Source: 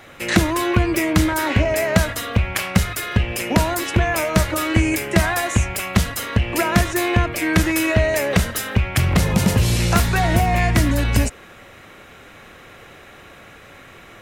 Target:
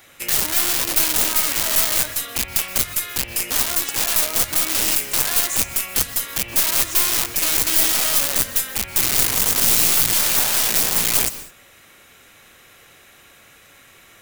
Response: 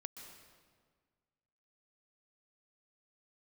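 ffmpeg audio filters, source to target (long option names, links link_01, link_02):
-filter_complex "[0:a]alimiter=limit=-7.5dB:level=0:latency=1:release=155,aeval=exprs='(mod(6.31*val(0)+1,2)-1)/6.31':channel_layout=same,crystalizer=i=5:c=0,aeval=exprs='1.78*(cos(1*acos(clip(val(0)/1.78,-1,1)))-cos(1*PI/2))+0.562*(cos(2*acos(clip(val(0)/1.78,-1,1)))-cos(2*PI/2))':channel_layout=same,asplit=2[link_01][link_02];[1:a]atrim=start_sample=2205,afade=type=out:start_time=0.27:duration=0.01,atrim=end_sample=12348[link_03];[link_02][link_03]afir=irnorm=-1:irlink=0,volume=3dB[link_04];[link_01][link_04]amix=inputs=2:normalize=0,volume=-16dB"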